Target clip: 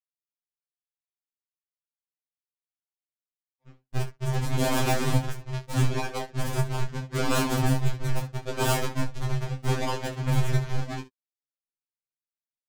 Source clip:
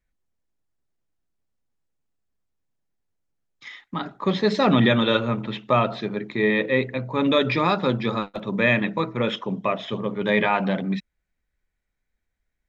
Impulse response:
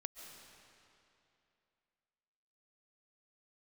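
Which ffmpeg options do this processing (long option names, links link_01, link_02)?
-filter_complex "[0:a]highpass=frequency=730:poles=1,agate=range=-37dB:threshold=-36dB:ratio=16:detection=peak,equalizer=frequency=3800:width=0.64:gain=7,asplit=2[link_01][link_02];[link_02]alimiter=limit=-14dB:level=0:latency=1,volume=-2.5dB[link_03];[link_01][link_03]amix=inputs=2:normalize=0,aresample=11025,aresample=44100,aeval=exprs='0.708*(cos(1*acos(clip(val(0)/0.708,-1,1)))-cos(1*PI/2))+0.126*(cos(6*acos(clip(val(0)/0.708,-1,1)))-cos(6*PI/2))':channel_layout=same,aresample=16000,acrusher=samples=37:mix=1:aa=0.000001:lfo=1:lforange=59.2:lforate=0.78,aresample=44100,adynamicsmooth=sensitivity=5:basefreq=4000,aeval=exprs='0.188*(abs(mod(val(0)/0.188+3,4)-2)-1)':channel_layout=same,aecho=1:1:22|68:0.501|0.158,afftfilt=real='re*2.45*eq(mod(b,6),0)':imag='im*2.45*eq(mod(b,6),0)':win_size=2048:overlap=0.75"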